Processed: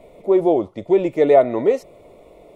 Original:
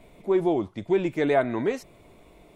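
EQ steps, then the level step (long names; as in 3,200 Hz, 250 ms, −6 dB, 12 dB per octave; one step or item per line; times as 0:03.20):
Butterworth band-reject 1,600 Hz, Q 5.8
parametric band 530 Hz +14 dB 0.95 octaves
0.0 dB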